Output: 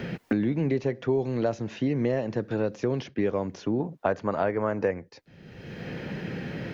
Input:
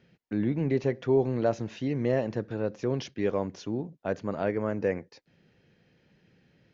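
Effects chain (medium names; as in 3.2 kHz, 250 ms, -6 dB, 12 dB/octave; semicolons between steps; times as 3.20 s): 3.80–4.91 s: peaking EQ 1 kHz +9 dB 2.1 oct; three bands compressed up and down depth 100%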